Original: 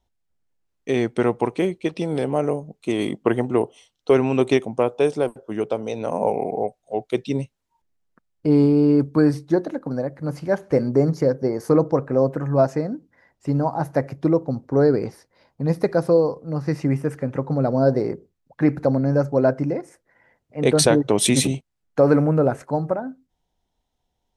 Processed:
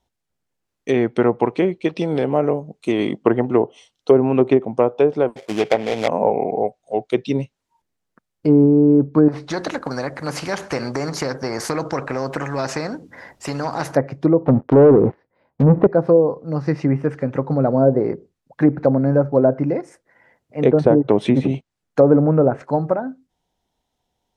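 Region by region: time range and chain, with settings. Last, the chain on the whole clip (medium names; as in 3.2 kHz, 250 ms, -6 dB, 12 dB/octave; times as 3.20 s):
5.36–6.08 s: peaking EQ 750 Hz +9 dB 0.64 oct + sample-rate reducer 2.8 kHz, jitter 20%
9.28–13.95 s: compression 2:1, threshold -20 dBFS + spectrum-flattening compressor 2:1
14.46–15.87 s: distance through air 480 m + waveshaping leveller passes 3
whole clip: low-pass that closes with the level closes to 750 Hz, closed at -12.5 dBFS; bass shelf 62 Hz -11.5 dB; trim +4 dB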